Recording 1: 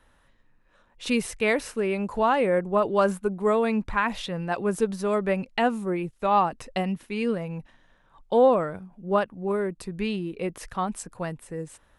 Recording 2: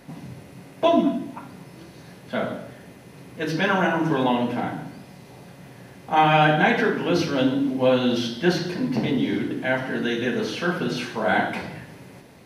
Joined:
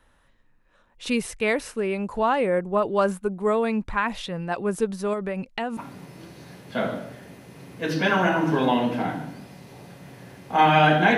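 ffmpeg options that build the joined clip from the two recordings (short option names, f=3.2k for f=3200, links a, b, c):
-filter_complex "[0:a]asettb=1/sr,asplit=3[a][b][c];[a]atrim=end=5.134[d];[b]atrim=start=5.13:end=5.77,asetpts=PTS-STARTPTS,afade=t=in:d=0.004:c=qsin,afade=t=out:st=0.636:d=0.004:c=qsin,acompressor=threshold=-24dB:ratio=6:attack=3.2:release=140:knee=1:detection=peak[e];[c]atrim=start=5.766[f];[d][e]acrossfade=d=0.004:c1=hsin:c2=qsin[g];[g][f]acrossfade=d=0.004:c1=qsin:c2=hsin,apad=whole_dur=11.17,atrim=end=11.17,atrim=end=5.772[h];[1:a]atrim=start=1.348:end=6.75[i];[h][i]acrossfade=d=0.004:c1=hsin:c2=hsin"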